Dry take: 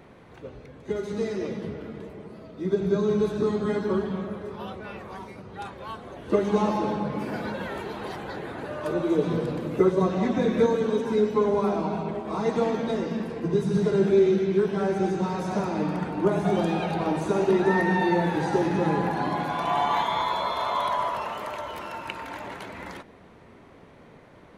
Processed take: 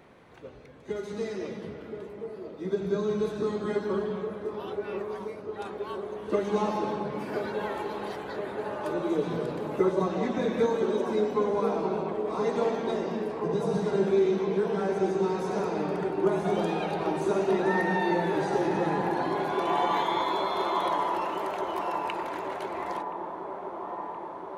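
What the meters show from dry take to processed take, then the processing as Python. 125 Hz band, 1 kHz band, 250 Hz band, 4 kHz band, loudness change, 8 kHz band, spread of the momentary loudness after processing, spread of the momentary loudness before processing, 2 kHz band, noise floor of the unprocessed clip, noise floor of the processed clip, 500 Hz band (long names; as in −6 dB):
−6.5 dB, −1.5 dB, −4.5 dB, −2.5 dB, −3.5 dB, can't be measured, 11 LU, 16 LU, −2.5 dB, −51 dBFS, −42 dBFS, −2.0 dB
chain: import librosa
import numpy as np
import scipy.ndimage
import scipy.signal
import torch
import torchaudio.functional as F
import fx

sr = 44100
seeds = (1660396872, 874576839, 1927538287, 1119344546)

p1 = fx.low_shelf(x, sr, hz=240.0, db=-6.5)
p2 = p1 + fx.echo_wet_bandpass(p1, sr, ms=1023, feedback_pct=75, hz=560.0, wet_db=-5.5, dry=0)
y = F.gain(torch.from_numpy(p2), -2.5).numpy()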